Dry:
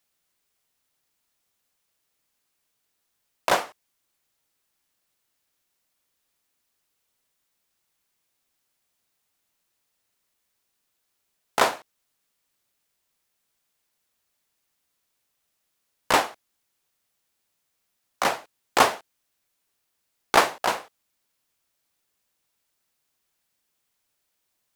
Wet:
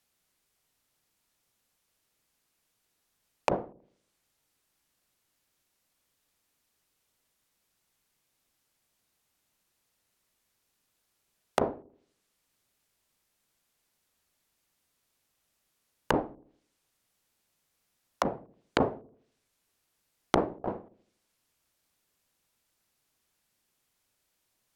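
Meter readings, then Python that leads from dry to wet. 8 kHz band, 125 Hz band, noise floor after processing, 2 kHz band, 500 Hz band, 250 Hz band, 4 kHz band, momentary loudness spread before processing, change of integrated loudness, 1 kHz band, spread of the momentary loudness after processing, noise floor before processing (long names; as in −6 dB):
−17.0 dB, +4.5 dB, −78 dBFS, −13.5 dB, −4.0 dB, +2.5 dB, −13.5 dB, 14 LU, −8.0 dB, −10.0 dB, 16 LU, −77 dBFS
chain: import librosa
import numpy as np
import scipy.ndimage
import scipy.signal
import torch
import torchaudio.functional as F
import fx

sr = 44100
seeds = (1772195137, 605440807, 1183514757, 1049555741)

y = fx.env_lowpass_down(x, sr, base_hz=390.0, full_db=-25.5)
y = fx.low_shelf(y, sr, hz=360.0, db=5.0)
y = fx.echo_wet_lowpass(y, sr, ms=80, feedback_pct=44, hz=420.0, wet_db=-15.0)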